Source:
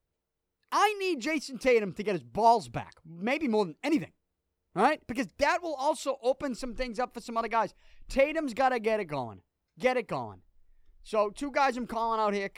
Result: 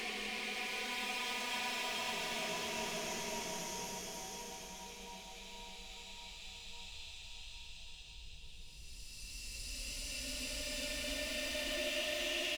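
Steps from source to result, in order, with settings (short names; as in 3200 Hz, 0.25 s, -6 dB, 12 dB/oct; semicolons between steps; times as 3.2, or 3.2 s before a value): repeated pitch sweeps +8.5 st, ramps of 0.622 s; de-hum 94.72 Hz, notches 10; tube stage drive 38 dB, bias 0.6; reverse; compressor 6:1, threshold -49 dBFS, peak gain reduction 10.5 dB; reverse; resonant high shelf 1800 Hz +9 dB, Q 1.5; Paulstretch 16×, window 0.25 s, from 7.48; on a send: feedback echo 0.553 s, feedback 59%, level -9 dB; on the sum: gain +6.5 dB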